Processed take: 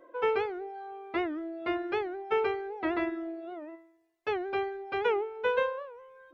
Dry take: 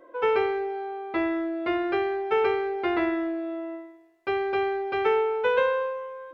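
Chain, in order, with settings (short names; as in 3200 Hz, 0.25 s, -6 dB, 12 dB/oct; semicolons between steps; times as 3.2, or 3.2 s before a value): reverb removal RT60 0.79 s; record warp 78 rpm, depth 160 cents; gain -3.5 dB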